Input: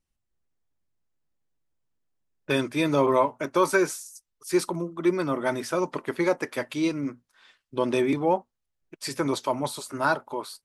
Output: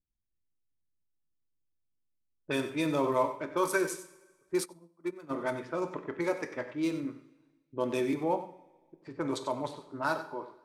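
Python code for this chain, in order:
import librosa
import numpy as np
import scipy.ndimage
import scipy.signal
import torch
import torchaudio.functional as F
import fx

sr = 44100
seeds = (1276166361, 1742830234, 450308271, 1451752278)

y = fx.wiener(x, sr, points=9)
y = fx.env_lowpass(y, sr, base_hz=380.0, full_db=-20.5)
y = fx.high_shelf(y, sr, hz=6500.0, db=10.0)
y = y + 10.0 ** (-12.5 / 20.0) * np.pad(y, (int(94 * sr / 1000.0), 0))[:len(y)]
y = fx.rev_double_slope(y, sr, seeds[0], early_s=0.55, late_s=1.5, knee_db=-15, drr_db=8.0)
y = fx.upward_expand(y, sr, threshold_db=-32.0, expansion=2.5, at=(4.64, 5.29), fade=0.02)
y = F.gain(torch.from_numpy(y), -7.5).numpy()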